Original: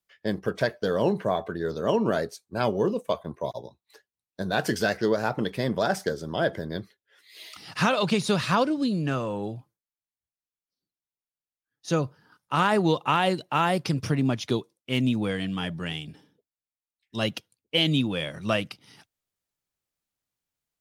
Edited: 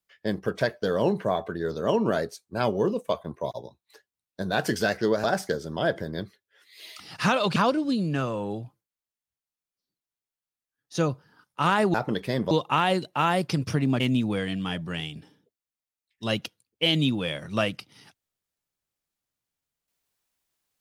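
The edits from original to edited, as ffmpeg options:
-filter_complex "[0:a]asplit=6[s0][s1][s2][s3][s4][s5];[s0]atrim=end=5.242[s6];[s1]atrim=start=5.808:end=8.132[s7];[s2]atrim=start=8.488:end=12.872[s8];[s3]atrim=start=5.238:end=5.812[s9];[s4]atrim=start=12.868:end=14.362[s10];[s5]atrim=start=14.918[s11];[s6][s7]acrossfade=d=0.004:c1=hsin:c2=hsin[s12];[s12][s8]acrossfade=d=0.004:c1=hsin:c2=hsin[s13];[s13][s9]acrossfade=d=0.004:c1=hsin:c2=hsin[s14];[s14][s10]acrossfade=d=0.004:c1=hsin:c2=hsin[s15];[s15][s11]acrossfade=d=0.004:c1=hsin:c2=hsin"

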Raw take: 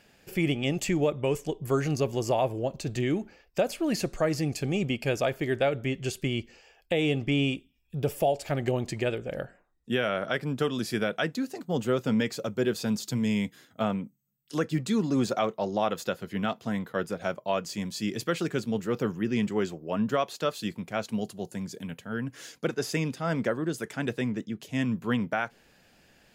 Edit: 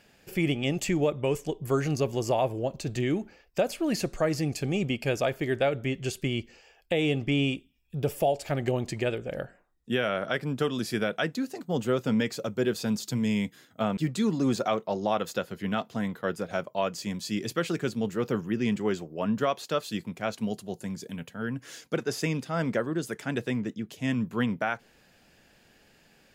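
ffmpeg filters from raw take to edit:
-filter_complex "[0:a]asplit=2[s0][s1];[s0]atrim=end=13.972[s2];[s1]atrim=start=14.678[s3];[s2][s3]acrossfade=d=0.004:c1=hsin:c2=hsin"

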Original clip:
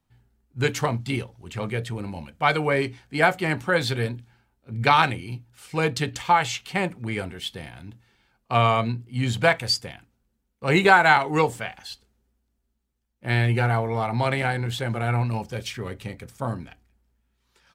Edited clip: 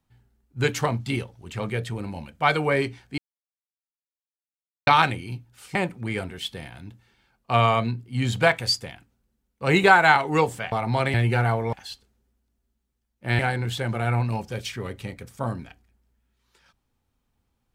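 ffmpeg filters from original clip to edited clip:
-filter_complex "[0:a]asplit=8[s0][s1][s2][s3][s4][s5][s6][s7];[s0]atrim=end=3.18,asetpts=PTS-STARTPTS,afade=t=out:st=3.176:d=0.004:c=hsin[s8];[s1]atrim=start=3.18:end=4.87,asetpts=PTS-STARTPTS,volume=0[s9];[s2]atrim=start=4.87:end=5.752,asetpts=PTS-STARTPTS,afade=t=in:d=0.004:c=hsin[s10];[s3]atrim=start=6.758:end=11.732[s11];[s4]atrim=start=13.978:end=14.402[s12];[s5]atrim=start=13.388:end=13.982[s13];[s6]atrim=start=11.728:end=13.392[s14];[s7]atrim=start=14.398[s15];[s8][s9][s10]concat=n=3:v=0:a=1[s16];[s16][s11]acrossfade=d=0.004:c1=hsin:c2=hsin[s17];[s17][s12]acrossfade=d=0.004:c1=hsin:c2=hsin[s18];[s18][s13]acrossfade=d=0.004:c1=hsin:c2=hsin[s19];[s19][s14]acrossfade=d=0.004:c1=hsin:c2=hsin[s20];[s20][s15]acrossfade=d=0.004:c1=hsin:c2=hsin"

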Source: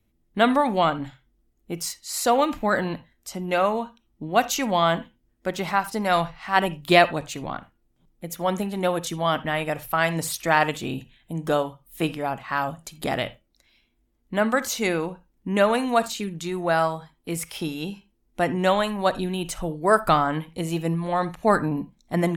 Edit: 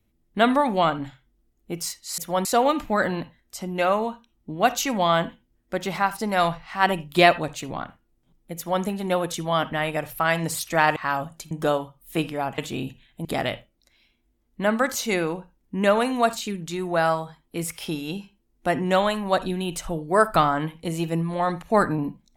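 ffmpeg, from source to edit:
-filter_complex "[0:a]asplit=7[s0][s1][s2][s3][s4][s5][s6];[s0]atrim=end=2.182[s7];[s1]atrim=start=8.288:end=8.562[s8];[s2]atrim=start=2.178:end=10.692[s9];[s3]atrim=start=12.428:end=12.982[s10];[s4]atrim=start=11.358:end=12.432[s11];[s5]atrim=start=10.688:end=11.362[s12];[s6]atrim=start=12.978[s13];[s7][s8]acrossfade=d=0.004:c1=hsin:c2=hsin[s14];[s14][s9]acrossfade=d=0.004:c1=hsin:c2=hsin[s15];[s15][s10]acrossfade=d=0.004:c1=hsin:c2=hsin[s16];[s16][s11]acrossfade=d=0.004:c1=hsin:c2=hsin[s17];[s17][s12]acrossfade=d=0.004:c1=hsin:c2=hsin[s18];[s18][s13]acrossfade=d=0.004:c1=hsin:c2=hsin"

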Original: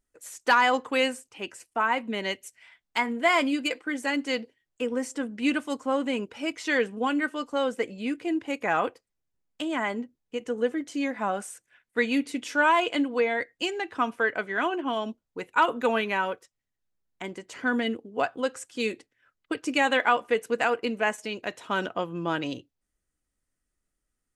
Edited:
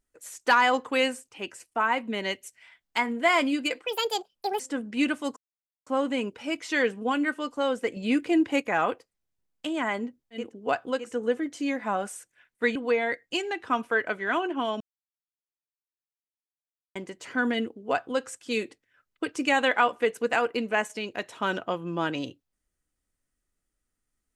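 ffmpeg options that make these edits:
-filter_complex "[0:a]asplit=11[s0][s1][s2][s3][s4][s5][s6][s7][s8][s9][s10];[s0]atrim=end=3.864[s11];[s1]atrim=start=3.86:end=5.05,asetpts=PTS-STARTPTS,asetrate=71442,aresample=44100,atrim=end_sample=32394,asetpts=PTS-STARTPTS[s12];[s2]atrim=start=5.046:end=5.82,asetpts=PTS-STARTPTS,afade=t=out:st=0.77:d=0.004:c=hsin,apad=pad_dur=0.5[s13];[s3]atrim=start=5.82:end=7.922,asetpts=PTS-STARTPTS,afade=t=in:d=0.004:c=hsin[s14];[s4]atrim=start=7.918:end=8.572,asetpts=PTS-STARTPTS,volume=1.88[s15];[s5]atrim=start=8.568:end=10.5[s16];[s6]atrim=start=17.81:end=18.66[s17];[s7]atrim=start=10.26:end=12.102[s18];[s8]atrim=start=13.038:end=15.09,asetpts=PTS-STARTPTS,afade=t=out:st=2.048:d=0.004:c=hsin[s19];[s9]atrim=start=15.09:end=17.24,asetpts=PTS-STARTPTS,volume=0[s20];[s10]atrim=start=17.24,asetpts=PTS-STARTPTS,afade=t=in:d=0.004:c=hsin[s21];[s11][s12]acrossfade=d=0.004:c1=hsin:c2=hsin[s22];[s13][s14]concat=n=2:v=0:a=1[s23];[s22][s23]acrossfade=d=0.004:c1=hsin:c2=hsin[s24];[s24][s15]acrossfade=d=0.004:c1=hsin:c2=hsin[s25];[s25][s16]acrossfade=d=0.004:c1=hsin:c2=hsin[s26];[s26][s17]acrossfade=d=0.24:c1=tri:c2=tri[s27];[s27][s18]acrossfade=d=0.24:c1=tri:c2=tri[s28];[s19][s20][s21]concat=n=3:v=0:a=1[s29];[s28][s29]acrossfade=d=0.004:c1=hsin:c2=hsin"

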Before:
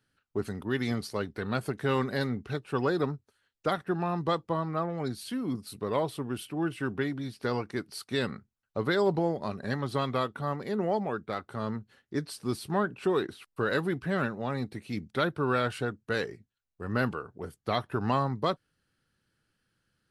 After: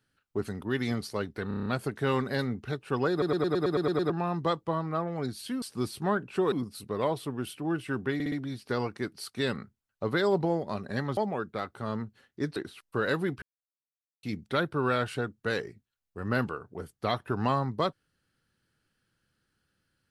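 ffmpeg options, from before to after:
-filter_complex "[0:a]asplit=25[s0][s1][s2][s3][s4][s5][s6][s7][s8][s9][s10][s11][s12][s13][s14][s15][s16][s17][s18][s19][s20][s21][s22][s23][s24];[s0]atrim=end=1.512[s25];[s1]atrim=start=1.478:end=1.512[s26];[s2]atrim=start=1.478:end=1.512[s27];[s3]atrim=start=1.478:end=1.512[s28];[s4]atrim=start=1.478:end=1.512[s29];[s5]atrim=start=1.478:end=1.512[s30];[s6]atrim=start=1.478:end=3.042[s31];[s7]atrim=start=2.928:end=3.042[s32];[s8]atrim=start=2.928:end=3.042[s33];[s9]atrim=start=2.928:end=3.042[s34];[s10]atrim=start=2.928:end=3.042[s35];[s11]atrim=start=2.928:end=3.042[s36];[s12]atrim=start=2.928:end=3.042[s37];[s13]atrim=start=2.928:end=3.042[s38];[s14]atrim=start=2.928:end=3.042[s39];[s15]atrim=start=3.918:end=5.442[s40];[s16]atrim=start=12.298:end=13.202[s41];[s17]atrim=start=5.438:end=7.122[s42];[s18]atrim=start=7.058:end=7.122[s43];[s19]atrim=start=7.058:end=7.122[s44];[s20]atrim=start=7.058:end=9.912[s45];[s21]atrim=start=10.908:end=12.302[s46];[s22]atrim=start=13.198:end=14.06,asetpts=PTS-STARTPTS,afade=t=out:st=0.858:d=0.004:c=hsin[s47];[s23]atrim=start=14.06:end=14.87,asetpts=PTS-STARTPTS,volume=0[s48];[s24]atrim=start=14.87,asetpts=PTS-STARTPTS,afade=t=in:d=0.004:c=hsin[s49];[s25][s26]acrossfade=d=0.004:c1=hsin:c2=hsin[s50];[s50][s27]acrossfade=d=0.004:c1=hsin:c2=hsin[s51];[s51][s28]acrossfade=d=0.004:c1=hsin:c2=hsin[s52];[s52][s29]acrossfade=d=0.004:c1=hsin:c2=hsin[s53];[s53][s30]acrossfade=d=0.004:c1=hsin:c2=hsin[s54];[s54][s31]acrossfade=d=0.004:c1=hsin:c2=hsin[s55];[s55][s32]acrossfade=d=0.004:c1=hsin:c2=hsin[s56];[s56][s33]acrossfade=d=0.004:c1=hsin:c2=hsin[s57];[s57][s34]acrossfade=d=0.004:c1=hsin:c2=hsin[s58];[s58][s35]acrossfade=d=0.004:c1=hsin:c2=hsin[s59];[s59][s36]acrossfade=d=0.004:c1=hsin:c2=hsin[s60];[s60][s37]acrossfade=d=0.004:c1=hsin:c2=hsin[s61];[s61][s38]acrossfade=d=0.004:c1=hsin:c2=hsin[s62];[s62][s39]acrossfade=d=0.004:c1=hsin:c2=hsin[s63];[s63][s40]acrossfade=d=0.004:c1=hsin:c2=hsin[s64];[s64][s41]acrossfade=d=0.004:c1=hsin:c2=hsin[s65];[s65][s42]acrossfade=d=0.004:c1=hsin:c2=hsin[s66];[s66][s43]acrossfade=d=0.004:c1=hsin:c2=hsin[s67];[s67][s44]acrossfade=d=0.004:c1=hsin:c2=hsin[s68];[s68][s45]acrossfade=d=0.004:c1=hsin:c2=hsin[s69];[s69][s46]acrossfade=d=0.004:c1=hsin:c2=hsin[s70];[s47][s48][s49]concat=n=3:v=0:a=1[s71];[s70][s71]acrossfade=d=0.004:c1=hsin:c2=hsin"

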